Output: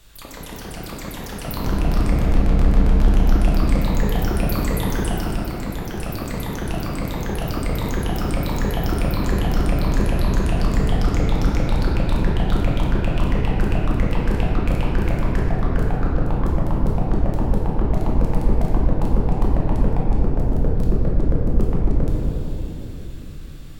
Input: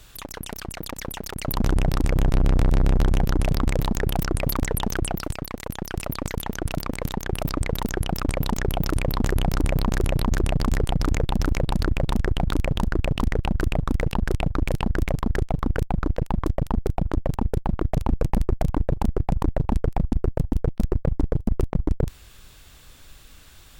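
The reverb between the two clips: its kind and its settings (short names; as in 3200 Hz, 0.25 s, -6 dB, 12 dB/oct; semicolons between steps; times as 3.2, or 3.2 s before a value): shoebox room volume 190 m³, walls hard, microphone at 0.83 m; gain -4.5 dB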